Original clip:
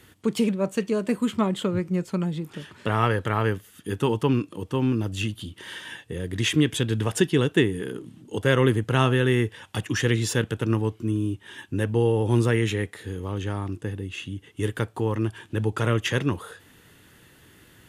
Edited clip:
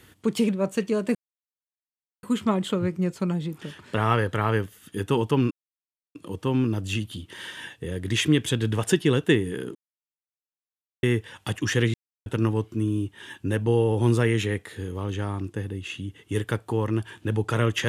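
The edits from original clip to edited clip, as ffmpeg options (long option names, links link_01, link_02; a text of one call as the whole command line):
ffmpeg -i in.wav -filter_complex "[0:a]asplit=7[link_01][link_02][link_03][link_04][link_05][link_06][link_07];[link_01]atrim=end=1.15,asetpts=PTS-STARTPTS,afade=type=out:start_time=1.146:duration=0.004:curve=hsin,apad=pad_dur=1.08[link_08];[link_02]atrim=start=1.15:end=4.43,asetpts=PTS-STARTPTS,afade=type=in:duration=0.004:curve=hsin,afade=type=out:start_time=3.276:duration=0.004:curve=hsin,apad=pad_dur=0.64[link_09];[link_03]atrim=start=4.43:end=8.03,asetpts=PTS-STARTPTS,afade=type=in:duration=0.004:curve=hsin,afade=type=out:start_time=3.596:duration=0.004:curve=hsin[link_10];[link_04]atrim=start=8.03:end=9.31,asetpts=PTS-STARTPTS,volume=0[link_11];[link_05]atrim=start=9.31:end=10.22,asetpts=PTS-STARTPTS,afade=type=in:duration=0.004:curve=hsin,afade=type=out:start_time=0.906:duration=0.004:curve=hsin[link_12];[link_06]atrim=start=10.22:end=10.54,asetpts=PTS-STARTPTS,volume=0[link_13];[link_07]atrim=start=10.54,asetpts=PTS-STARTPTS,afade=type=in:duration=0.004:curve=hsin[link_14];[link_08][link_09][link_10][link_11][link_12][link_13][link_14]concat=n=7:v=0:a=1" out.wav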